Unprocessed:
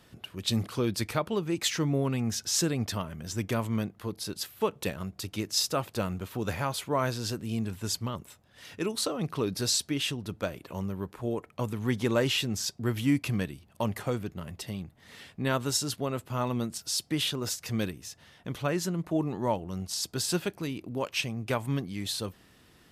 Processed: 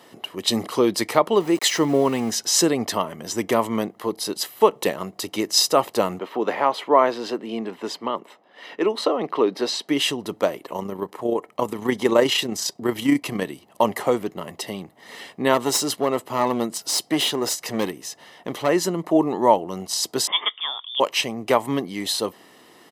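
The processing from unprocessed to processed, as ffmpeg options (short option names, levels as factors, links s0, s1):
-filter_complex "[0:a]asettb=1/sr,asplit=3[s0][s1][s2];[s0]atrim=end=1.404[s3];[s1]atrim=start=1.4:end=2.3,asetpts=PTS-STARTPTS,afade=t=in:d=0.004:c=qsin,afade=t=out:st=0.896:d=0.004:c=qsin,aeval=exprs='val(0)*gte(abs(val(0)),0.00794)':c=same[s4];[s2]atrim=start=2.296[s5];[s3][s4]acrossfade=d=0.004:c1=hsin:c2=qsin[s6];[s6][s5]acrossfade=d=0.004:c1=qsin:c2=hsin,asettb=1/sr,asplit=3[s7][s8][s9];[s7]atrim=end=6.194[s10];[s8]atrim=start=6.19:end=9.89,asetpts=PTS-STARTPTS,afade=t=in:d=0.004:c=qsin,afade=t=out:st=3.696:d=0.004:c=qsin,acrossover=split=190 3900:gain=0.0708 1 0.112[s11][s12][s13];[s11][s12][s13]amix=inputs=3:normalize=0[s14];[s9]atrim=start=9.886[s15];[s10][s14]acrossfade=d=0.004:c1=hsin:c2=qsin[s16];[s16][s15]acrossfade=d=0.004:c1=qsin:c2=hsin,asettb=1/sr,asplit=3[s17][s18][s19];[s17]atrim=end=10.564[s20];[s18]atrim=start=10.56:end=13.46,asetpts=PTS-STARTPTS,afade=t=in:d=0.004:c=qsin,afade=t=out:st=2.896:d=0.004:c=qsin,tremolo=f=30:d=0.462[s21];[s19]atrim=start=13.456[s22];[s20][s21]acrossfade=d=0.004:c1=hsin:c2=qsin[s23];[s23][s22]acrossfade=d=0.004:c1=qsin:c2=hsin,asettb=1/sr,asplit=3[s24][s25][s26];[s24]atrim=end=15.544[s27];[s25]atrim=start=15.54:end=18.69,asetpts=PTS-STARTPTS,afade=t=in:d=0.004:c=qsin,afade=t=out:st=3.146:d=0.004:c=qsin,aeval=exprs='clip(val(0),-1,0.0376)':c=same[s28];[s26]atrim=start=18.686[s29];[s27][s28]acrossfade=d=0.004:c1=hsin:c2=qsin[s30];[s30][s29]acrossfade=d=0.004:c1=qsin:c2=hsin,asettb=1/sr,asplit=3[s31][s32][s33];[s31]atrim=end=20.274[s34];[s32]atrim=start=20.27:end=21,asetpts=PTS-STARTPTS,afade=t=in:d=0.004:c=qsin,afade=t=out:st=0.726:d=0.004:c=qsin,lowpass=f=3100:t=q:w=0.5098,lowpass=f=3100:t=q:w=0.6013,lowpass=f=3100:t=q:w=0.9,lowpass=f=3100:t=q:w=2.563,afreqshift=-3700[s35];[s33]atrim=start=20.996[s36];[s34][s35]acrossfade=d=0.004:c1=hsin:c2=qsin[s37];[s37][s36]acrossfade=d=0.004:c1=qsin:c2=hsin,highpass=310,equalizer=f=480:w=1:g=11,aecho=1:1:1:0.48,volume=2.37"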